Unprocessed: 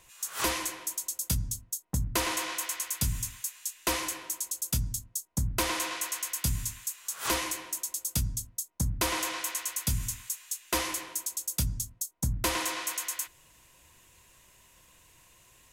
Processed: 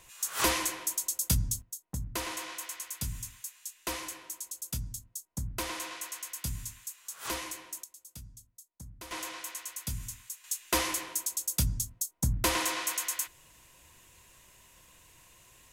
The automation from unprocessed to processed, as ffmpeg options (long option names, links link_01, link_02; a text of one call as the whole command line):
ffmpeg -i in.wav -af "asetnsamples=nb_out_samples=441:pad=0,asendcmd='1.62 volume volume -6.5dB;7.84 volume volume -18dB;9.11 volume volume -7dB;10.44 volume volume 1dB',volume=2dB" out.wav